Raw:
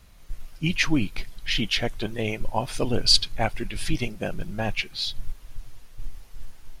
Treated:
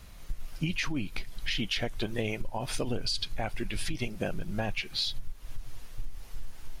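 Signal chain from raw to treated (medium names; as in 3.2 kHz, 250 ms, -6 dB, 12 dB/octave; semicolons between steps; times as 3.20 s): peak limiter -15.5 dBFS, peak gain reduction 10 dB; compression, threshold -31 dBFS, peak gain reduction 12.5 dB; trim +3.5 dB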